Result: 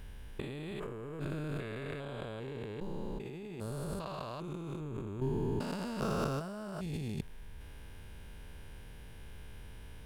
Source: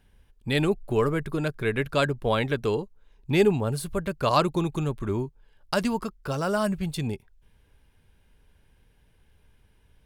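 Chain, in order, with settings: stepped spectrum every 0.4 s; negative-ratio compressor -42 dBFS, ratio -1; gain +3 dB

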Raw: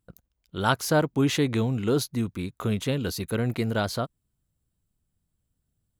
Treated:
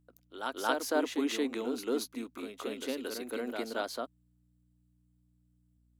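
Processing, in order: elliptic high-pass 250 Hz; hum 60 Hz, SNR 31 dB; reverse echo 0.227 s -5.5 dB; gain -7 dB

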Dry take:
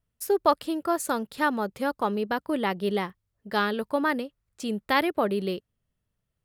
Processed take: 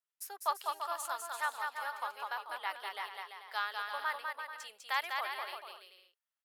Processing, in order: HPF 830 Hz 24 dB/oct; on a send: bouncing-ball echo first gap 0.2 s, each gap 0.7×, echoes 5; on the sum: gain -8.5 dB

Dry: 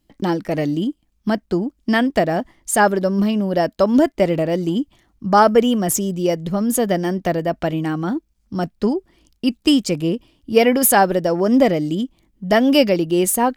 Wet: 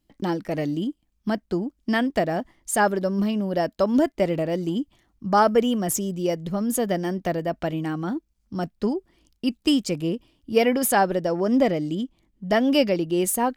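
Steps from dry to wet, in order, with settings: 10.74–13.2 high shelf 11000 Hz -8 dB; gain -5.5 dB

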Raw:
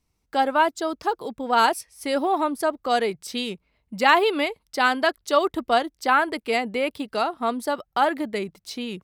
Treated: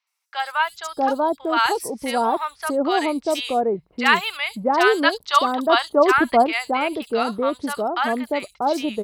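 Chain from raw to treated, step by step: 5.05–5.85 graphic EQ 250/1000/4000 Hz +5/+7/+6 dB; three bands offset in time mids, highs, lows 70/640 ms, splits 930/4900 Hz; gain +3.5 dB

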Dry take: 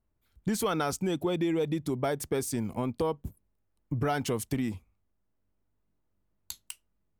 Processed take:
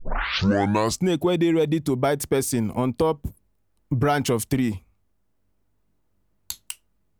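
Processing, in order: tape start at the beginning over 1.08 s; gain +8 dB

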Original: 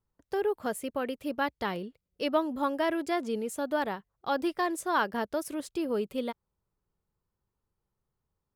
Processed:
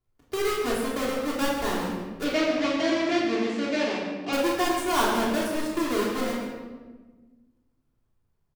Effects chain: half-waves squared off; 2.24–4.33 speaker cabinet 140–5700 Hz, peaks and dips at 930 Hz -7 dB, 1400 Hz -5 dB, 2300 Hz +4 dB; echo 0.144 s -12 dB; shoebox room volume 1000 m³, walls mixed, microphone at 3.2 m; gain -6 dB

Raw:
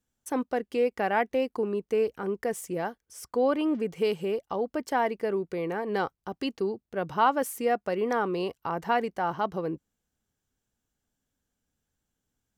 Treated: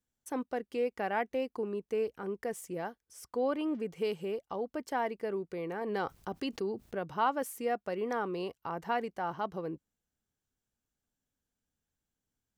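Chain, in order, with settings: 5.81–6.99 fast leveller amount 50%; gain -6.5 dB

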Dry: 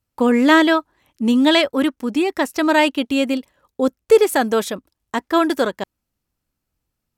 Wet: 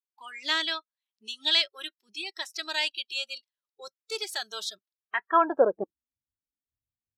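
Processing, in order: band-pass sweep 4300 Hz -> 260 Hz, 4.84–5.94; spectral noise reduction 23 dB; gain +1.5 dB

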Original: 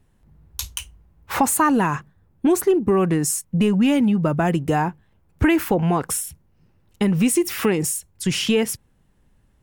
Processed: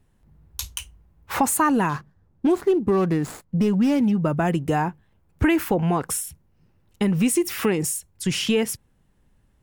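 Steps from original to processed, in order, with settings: 1.89–4.24 median filter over 15 samples; gain -2 dB

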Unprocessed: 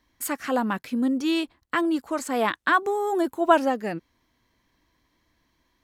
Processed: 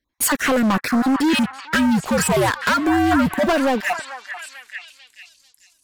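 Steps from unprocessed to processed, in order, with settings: random spectral dropouts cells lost 28%; compressor, threshold -25 dBFS, peak gain reduction 13 dB; sample leveller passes 5; 1.33–3.47 frequency shift -87 Hz; on a send: delay with a stepping band-pass 0.442 s, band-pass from 1300 Hz, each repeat 0.7 oct, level -5 dB

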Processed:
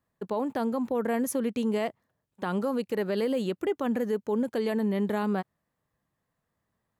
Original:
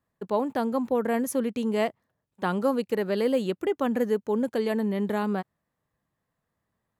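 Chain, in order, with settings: limiter -20 dBFS, peak gain reduction 7 dB

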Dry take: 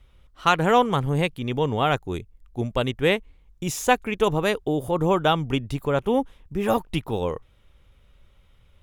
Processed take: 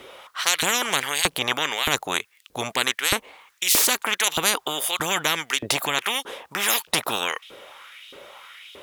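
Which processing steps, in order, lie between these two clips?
LFO high-pass saw up 1.6 Hz 340–3700 Hz; spectral compressor 10:1; gain -1 dB

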